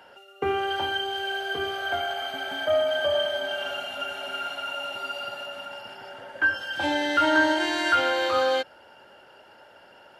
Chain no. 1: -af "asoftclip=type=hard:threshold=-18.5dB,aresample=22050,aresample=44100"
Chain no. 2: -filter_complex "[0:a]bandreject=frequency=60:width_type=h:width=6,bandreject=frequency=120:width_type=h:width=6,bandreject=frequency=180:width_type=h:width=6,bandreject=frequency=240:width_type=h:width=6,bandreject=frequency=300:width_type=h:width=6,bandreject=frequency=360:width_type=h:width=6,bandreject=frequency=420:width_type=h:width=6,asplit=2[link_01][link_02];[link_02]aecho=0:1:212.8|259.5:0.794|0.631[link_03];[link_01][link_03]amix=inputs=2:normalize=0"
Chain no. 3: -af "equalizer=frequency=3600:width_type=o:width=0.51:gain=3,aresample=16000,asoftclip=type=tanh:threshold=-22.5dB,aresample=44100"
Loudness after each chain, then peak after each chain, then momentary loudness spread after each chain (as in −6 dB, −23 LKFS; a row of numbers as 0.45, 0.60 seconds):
−26.5, −23.5, −28.5 LKFS; −18.0, −6.5, −21.0 dBFS; 12, 12, 9 LU